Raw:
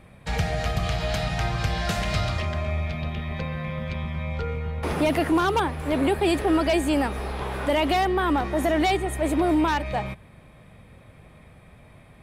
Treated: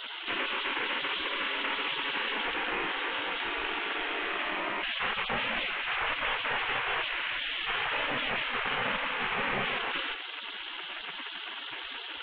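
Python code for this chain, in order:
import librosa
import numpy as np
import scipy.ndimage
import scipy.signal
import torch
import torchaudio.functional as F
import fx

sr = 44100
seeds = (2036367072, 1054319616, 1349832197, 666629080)

y = fx.cvsd(x, sr, bps=16000)
y = fx.spec_gate(y, sr, threshold_db=-25, keep='weak')
y = fx.peak_eq(y, sr, hz=190.0, db=-15.0, octaves=0.93, at=(5.77, 8.11))
y = fx.env_flatten(y, sr, amount_pct=70)
y = F.gain(torch.from_numpy(y), 6.5).numpy()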